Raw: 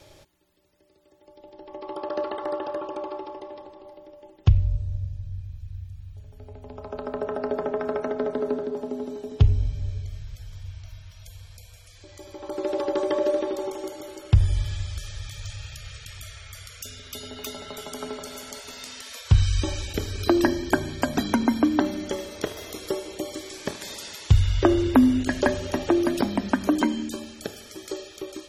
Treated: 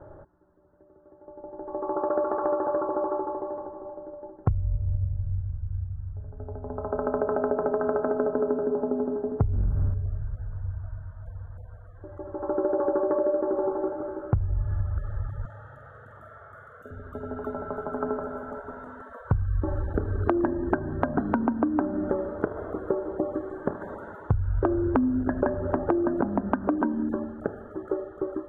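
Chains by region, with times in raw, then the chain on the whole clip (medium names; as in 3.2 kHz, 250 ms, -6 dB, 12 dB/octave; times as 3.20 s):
9.53–9.94 s: zero-crossing glitches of -24 dBFS + waveshaping leveller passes 2
15.45–16.91 s: high-pass 230 Hz + flutter echo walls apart 8 m, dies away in 0.47 s
whole clip: elliptic low-pass 1.5 kHz, stop band 40 dB; compression 6:1, threshold -28 dBFS; trim +6.5 dB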